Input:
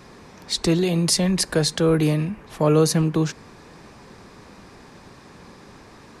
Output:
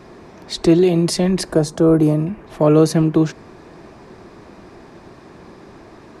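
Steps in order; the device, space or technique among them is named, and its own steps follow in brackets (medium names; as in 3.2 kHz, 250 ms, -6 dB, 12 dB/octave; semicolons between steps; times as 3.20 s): 1.52–2.27 s: high-order bell 2.7 kHz -10 dB; inside a helmet (treble shelf 3.5 kHz -8 dB; small resonant body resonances 350/650 Hz, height 8 dB, ringing for 35 ms); trim +2.5 dB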